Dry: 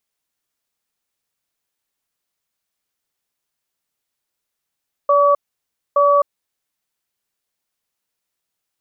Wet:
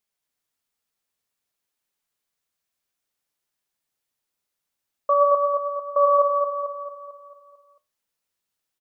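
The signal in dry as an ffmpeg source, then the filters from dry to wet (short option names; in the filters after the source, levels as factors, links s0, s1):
-f lavfi -i "aevalsrc='0.224*(sin(2*PI*574*t)+sin(2*PI*1140*t))*clip(min(mod(t,0.87),0.26-mod(t,0.87))/0.005,0,1)':d=1.65:s=44100"
-af "flanger=delay=4.7:depth=8.8:regen=73:speed=0.56:shape=sinusoidal,aecho=1:1:223|446|669|892|1115|1338|1561:0.596|0.304|0.155|0.079|0.0403|0.0206|0.0105"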